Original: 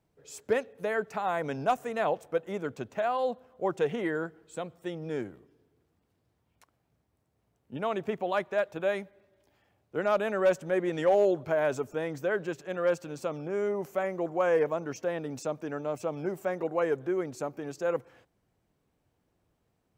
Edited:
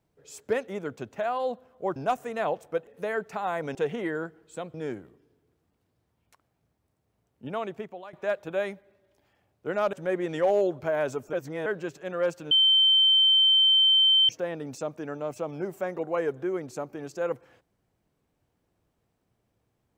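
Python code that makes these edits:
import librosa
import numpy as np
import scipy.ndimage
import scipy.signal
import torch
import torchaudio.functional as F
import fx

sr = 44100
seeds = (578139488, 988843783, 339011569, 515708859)

y = fx.edit(x, sr, fx.swap(start_s=0.68, length_s=0.88, other_s=2.47, other_length_s=1.28),
    fx.cut(start_s=4.74, length_s=0.29),
    fx.fade_out_to(start_s=7.79, length_s=0.63, floor_db=-22.0),
    fx.cut(start_s=10.22, length_s=0.35),
    fx.reverse_span(start_s=11.97, length_s=0.33),
    fx.bleep(start_s=13.15, length_s=1.78, hz=3100.0, db=-16.5), tone=tone)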